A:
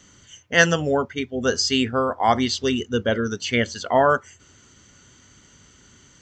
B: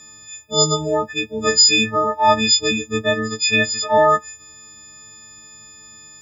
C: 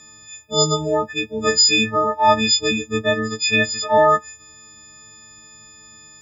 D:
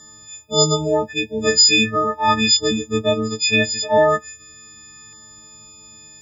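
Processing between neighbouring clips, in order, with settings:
every partial snapped to a pitch grid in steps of 6 semitones; healed spectral selection 0:00.50–0:00.86, 1,300–3,500 Hz before
high-shelf EQ 5,600 Hz −4.5 dB
auto-filter notch saw down 0.39 Hz 590–2,500 Hz; level +2 dB

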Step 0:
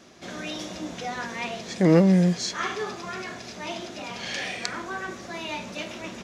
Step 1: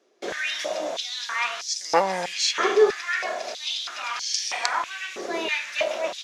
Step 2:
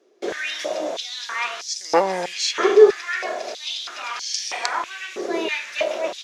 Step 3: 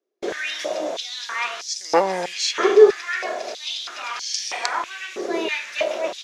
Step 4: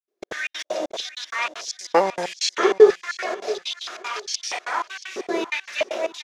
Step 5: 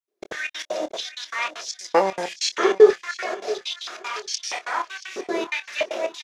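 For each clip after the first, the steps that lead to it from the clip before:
noise gate with hold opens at −36 dBFS; high-pass on a step sequencer 3.1 Hz 420–5,400 Hz; level +4 dB
parametric band 380 Hz +7.5 dB 1 octave
noise gate with hold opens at −28 dBFS
gate pattern ".xx.xx.x" 193 BPM −60 dB; repeating echo 680 ms, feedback 25%, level −16.5 dB
double-tracking delay 26 ms −11.5 dB; level −1 dB

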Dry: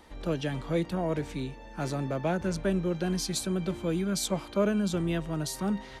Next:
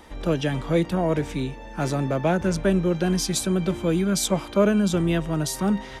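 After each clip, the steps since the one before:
notch filter 4,300 Hz, Q 11
level +7 dB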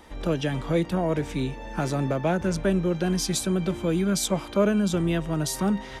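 camcorder AGC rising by 9.3 dB per second
level −2.5 dB

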